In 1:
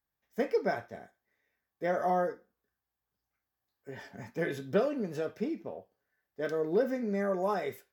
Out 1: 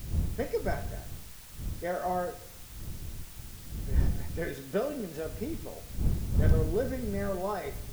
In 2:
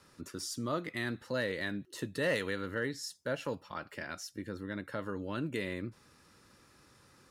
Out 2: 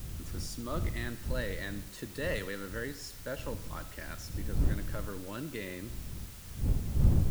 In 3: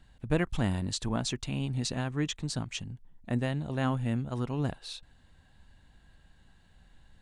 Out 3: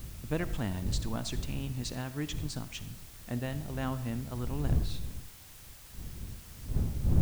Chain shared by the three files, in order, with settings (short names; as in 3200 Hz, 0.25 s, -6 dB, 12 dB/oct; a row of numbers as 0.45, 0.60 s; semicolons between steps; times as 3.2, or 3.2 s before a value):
wind noise 90 Hz -30 dBFS; requantised 8-bit, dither triangular; digital reverb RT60 0.82 s, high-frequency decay 0.75×, pre-delay 20 ms, DRR 13.5 dB; normalise peaks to -12 dBFS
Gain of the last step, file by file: -2.5, -3.5, -5.0 dB